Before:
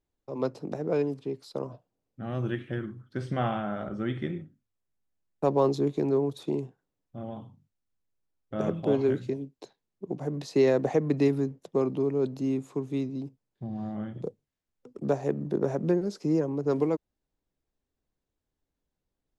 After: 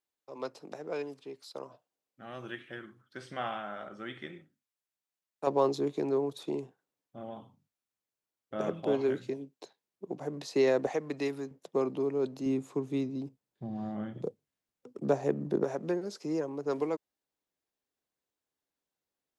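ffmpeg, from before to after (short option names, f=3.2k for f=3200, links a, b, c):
-af "asetnsamples=n=441:p=0,asendcmd='5.47 highpass f 450;10.87 highpass f 980;11.51 highpass f 420;12.46 highpass f 180;15.64 highpass f 650',highpass=f=1.2k:p=1"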